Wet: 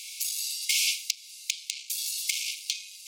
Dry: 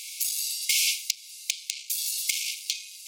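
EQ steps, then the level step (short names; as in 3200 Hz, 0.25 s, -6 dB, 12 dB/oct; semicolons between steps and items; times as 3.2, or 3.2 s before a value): steep high-pass 2000 Hz; high shelf 8700 Hz -5.5 dB; 0.0 dB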